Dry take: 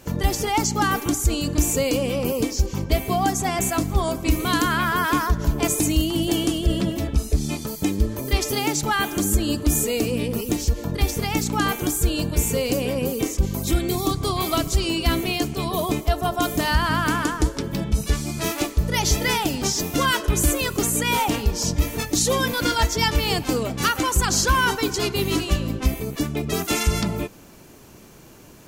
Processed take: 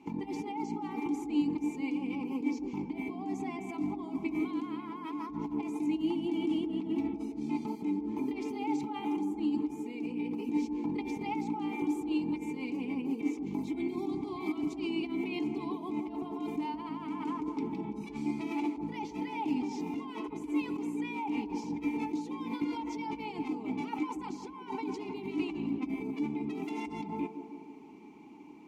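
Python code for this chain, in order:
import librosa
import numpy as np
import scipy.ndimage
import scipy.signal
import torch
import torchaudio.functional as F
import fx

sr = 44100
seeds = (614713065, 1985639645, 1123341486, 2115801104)

y = fx.peak_eq(x, sr, hz=450.0, db=2.5, octaves=2.8)
y = y + 0.49 * np.pad(y, (int(4.7 * sr / 1000.0), 0))[:len(y)]
y = fx.over_compress(y, sr, threshold_db=-25.0, ratio=-1.0)
y = fx.vowel_filter(y, sr, vowel='u')
y = fx.echo_wet_bandpass(y, sr, ms=157, feedback_pct=61, hz=480.0, wet_db=-7)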